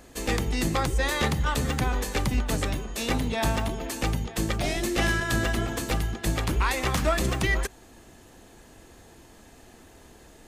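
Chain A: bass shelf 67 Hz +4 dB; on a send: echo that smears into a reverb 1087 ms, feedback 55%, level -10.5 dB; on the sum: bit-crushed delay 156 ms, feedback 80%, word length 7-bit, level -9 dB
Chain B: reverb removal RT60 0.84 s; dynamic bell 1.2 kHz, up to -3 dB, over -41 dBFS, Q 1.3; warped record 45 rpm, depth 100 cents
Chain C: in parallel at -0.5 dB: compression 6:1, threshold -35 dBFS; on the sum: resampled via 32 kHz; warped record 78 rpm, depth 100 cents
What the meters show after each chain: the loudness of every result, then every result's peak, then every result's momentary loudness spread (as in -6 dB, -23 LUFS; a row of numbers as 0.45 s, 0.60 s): -25.5 LUFS, -29.0 LUFS, -25.0 LUFS; -9.5 dBFS, -14.0 dBFS, -12.0 dBFS; 15 LU, 4 LU, 4 LU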